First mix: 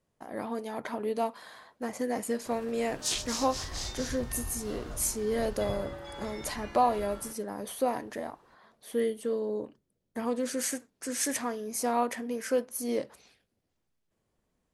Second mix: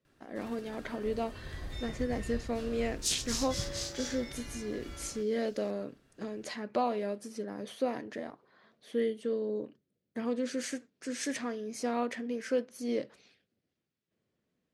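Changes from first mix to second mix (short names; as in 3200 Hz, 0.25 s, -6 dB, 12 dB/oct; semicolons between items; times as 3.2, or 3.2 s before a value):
speech: add BPF 120–4700 Hz; first sound: entry -2.10 s; master: add bell 900 Hz -9.5 dB 1 oct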